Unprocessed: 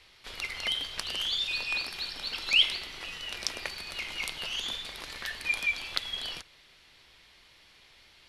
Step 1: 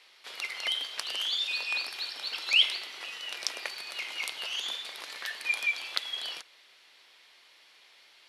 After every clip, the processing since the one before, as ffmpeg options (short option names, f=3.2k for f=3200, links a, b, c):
-af "highpass=450"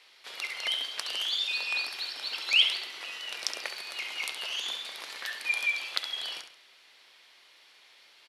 -af "aecho=1:1:68|136|204|272:0.355|0.124|0.0435|0.0152"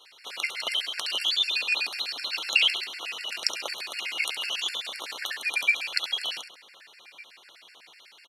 -filter_complex "[0:a]asplit=2[a][b];[b]adelay=1516,volume=-16dB,highshelf=f=4k:g=-34.1[c];[a][c]amix=inputs=2:normalize=0,afftfilt=real='re*gt(sin(2*PI*8*pts/sr)*(1-2*mod(floor(b*sr/1024/1400),2)),0)':imag='im*gt(sin(2*PI*8*pts/sr)*(1-2*mod(floor(b*sr/1024/1400),2)),0)':win_size=1024:overlap=0.75,volume=7.5dB"